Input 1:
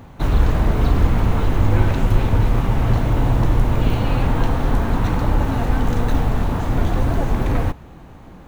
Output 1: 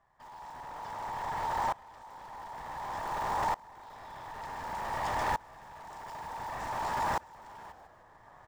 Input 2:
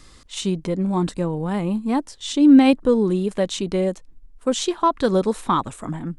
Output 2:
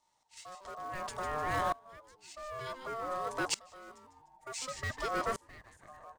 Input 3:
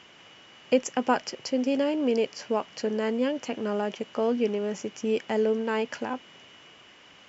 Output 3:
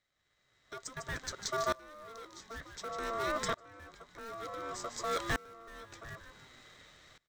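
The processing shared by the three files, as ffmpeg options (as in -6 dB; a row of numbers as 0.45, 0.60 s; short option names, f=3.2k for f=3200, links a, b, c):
-filter_complex "[0:a]superequalizer=6b=1.41:9b=2.24:11b=0.501:14b=1.58:15b=2.24,asplit=2[a][b];[b]acrusher=bits=5:dc=4:mix=0:aa=0.000001,volume=-11.5dB[c];[a][c]amix=inputs=2:normalize=0,dynaudnorm=f=120:g=11:m=12dB,acrossover=split=2700[d][e];[d]asoftclip=type=tanh:threshold=-18.5dB[f];[e]acontrast=23[g];[f][g]amix=inputs=2:normalize=0,highshelf=f=3.5k:g=-7.5,aeval=exprs='val(0)*sin(2*PI*910*n/s)':c=same,asplit=5[h][i][j][k][l];[i]adelay=150,afreqshift=-130,volume=-10dB[m];[j]adelay=300,afreqshift=-260,volume=-18.9dB[n];[k]adelay=450,afreqshift=-390,volume=-27.7dB[o];[l]adelay=600,afreqshift=-520,volume=-36.6dB[p];[h][m][n][o][p]amix=inputs=5:normalize=0,aeval=exprs='val(0)*pow(10,-25*if(lt(mod(-0.55*n/s,1),2*abs(-0.55)/1000),1-mod(-0.55*n/s,1)/(2*abs(-0.55)/1000),(mod(-0.55*n/s,1)-2*abs(-0.55)/1000)/(1-2*abs(-0.55)/1000))/20)':c=same,volume=-6dB"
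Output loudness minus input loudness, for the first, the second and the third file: -16.0, -17.0, -10.5 LU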